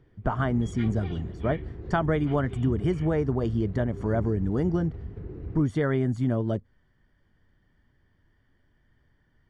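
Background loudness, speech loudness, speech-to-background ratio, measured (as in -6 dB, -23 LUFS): -38.5 LUFS, -27.5 LUFS, 11.0 dB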